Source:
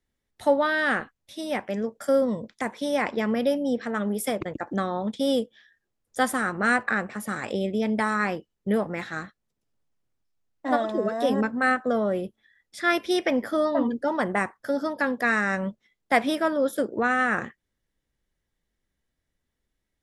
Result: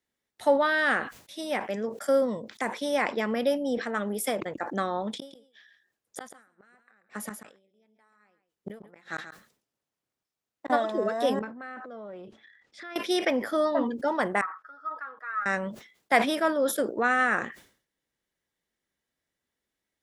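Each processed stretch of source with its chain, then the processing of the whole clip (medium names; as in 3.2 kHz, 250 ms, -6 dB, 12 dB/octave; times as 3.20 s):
5.17–10.70 s: inverted gate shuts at -21 dBFS, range -39 dB + delay 137 ms -11 dB
11.39–12.96 s: compression 12:1, threshold -36 dBFS + transient shaper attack -4 dB, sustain +11 dB + distance through air 120 m
14.41–15.46 s: band-pass filter 1.3 kHz, Q 13 + comb 6.3 ms, depth 72%
whole clip: high-pass 340 Hz 6 dB/octave; decay stretcher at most 120 dB/s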